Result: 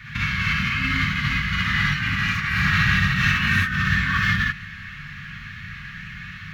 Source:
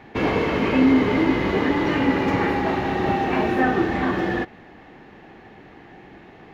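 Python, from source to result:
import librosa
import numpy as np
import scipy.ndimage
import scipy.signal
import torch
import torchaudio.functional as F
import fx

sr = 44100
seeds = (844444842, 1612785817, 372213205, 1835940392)

y = scipy.signal.sosfilt(scipy.signal.ellip(3, 1.0, 40, [170.0, 1400.0], 'bandstop', fs=sr, output='sos'), x)
y = fx.over_compress(y, sr, threshold_db=-32.0, ratio=-0.5)
y = fx.rev_gated(y, sr, seeds[0], gate_ms=90, shape='rising', drr_db=-5.0)
y = y * librosa.db_to_amplitude(6.0)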